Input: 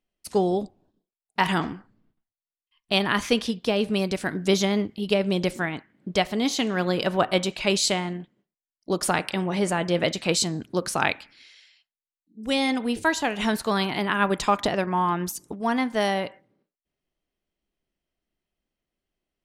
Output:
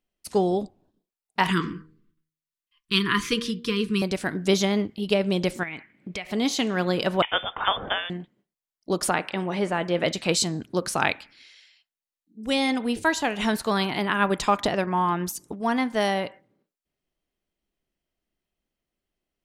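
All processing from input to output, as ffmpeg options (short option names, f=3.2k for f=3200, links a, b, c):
-filter_complex "[0:a]asettb=1/sr,asplit=3[a][b][c];[a]atrim=end=1.504[d];[b]atrim=start=1.5:end=4.02,asetpts=PTS-STARTPTS,afade=t=in:d=0.004:c=qsin,afade=t=out:st=2.516:d=0.004:c=qsin,asuperstop=centerf=680:order=12:qfactor=1.3,aecho=1:1:5.9:0.35,atrim=end_sample=111132,bandreject=f=78.33:t=h:w=4,bandreject=f=156.66:t=h:w=4,bandreject=f=234.99:t=h:w=4,bandreject=f=313.32:t=h:w=4,bandreject=f=391.65:t=h:w=4,bandreject=f=469.98:t=h:w=4,bandreject=f=548.31:t=h:w=4[e];[c]atrim=start=4.016[f];[d][e]acrossfade=d=0.004:c1=hsin:c2=qsin[g];[g][f]acrossfade=d=0.004:c1=qsin:c2=hsin,asettb=1/sr,asplit=3[h][i][j];[h]atrim=end=5.634[k];[i]atrim=start=5.63:end=6.31,asetpts=PTS-STARTPTS,afade=t=in:d=0.004:c=qsin,afade=t=out:st=0.676:d=0.004:c=qsin,equalizer=f=2.3k:t=o:w=0.5:g=14,acompressor=threshold=-31dB:ratio=5:attack=3.2:release=140:knee=1:detection=peak[l];[j]atrim=start=6.306[m];[k][l]acrossfade=d=0.004:c1=hsin:c2=qsin[n];[n][m]acrossfade=d=0.004:c1=qsin:c2=hsin,asettb=1/sr,asplit=3[o][p][q];[o]atrim=end=7.224[r];[p]atrim=start=7.22:end=8.1,asetpts=PTS-STARTPTS,afade=t=in:d=0.004:c=qsin,afade=t=out:st=0.876:d=0.004:c=qsin,tiltshelf=f=1.3k:g=-9,lowpass=f=3.1k:t=q:w=0.5098,lowpass=f=3.1k:t=q:w=0.6013,lowpass=f=3.1k:t=q:w=0.9,lowpass=f=3.1k:t=q:w=2.563,afreqshift=-3700[s];[q]atrim=start=8.096[t];[r][s]acrossfade=d=0.004:c1=hsin:c2=qsin[u];[u][t]acrossfade=d=0.004:c1=qsin:c2=hsin,asettb=1/sr,asplit=3[v][w][x];[v]atrim=end=9.094[y];[w]atrim=start=9.09:end=10.06,asetpts=PTS-STARTPTS,afade=t=in:d=0.004:c=qsin,afade=t=out:st=0.966:d=0.004:c=qsin,acrossover=split=3500[z][aa];[aa]acompressor=threshold=-47dB:ratio=4:attack=1:release=60[ab];[z][ab]amix=inputs=2:normalize=0,equalizer=f=70:w=0.68:g=-9.5[ac];[x]atrim=start=10.056[ad];[y][ac]acrossfade=d=0.004:c1=hsin:c2=qsin[ae];[ae][ad]acrossfade=d=0.004:c1=qsin:c2=hsin"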